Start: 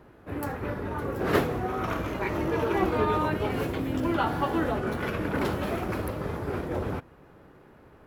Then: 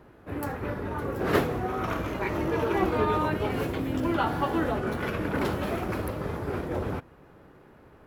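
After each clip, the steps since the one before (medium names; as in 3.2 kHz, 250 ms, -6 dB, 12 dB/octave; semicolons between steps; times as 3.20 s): no audible change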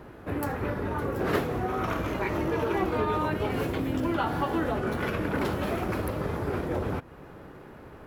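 compression 2:1, threshold -38 dBFS, peak gain reduction 11 dB; trim +7 dB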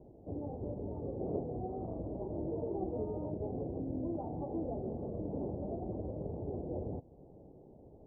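steep low-pass 760 Hz 48 dB/octave; trim -9 dB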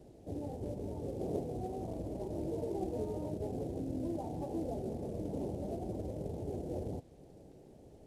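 CVSD coder 64 kbps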